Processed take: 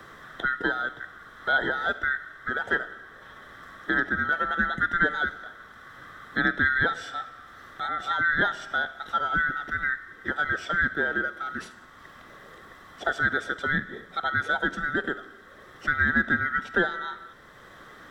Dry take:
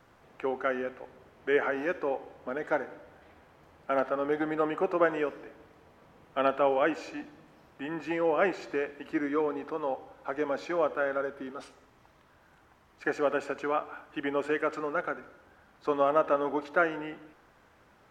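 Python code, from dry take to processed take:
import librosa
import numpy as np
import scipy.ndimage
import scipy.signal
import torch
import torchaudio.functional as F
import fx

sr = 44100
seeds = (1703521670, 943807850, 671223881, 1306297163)

y = fx.band_swap(x, sr, width_hz=1000)
y = fx.band_squash(y, sr, depth_pct=40)
y = y * 10.0 ** (3.0 / 20.0)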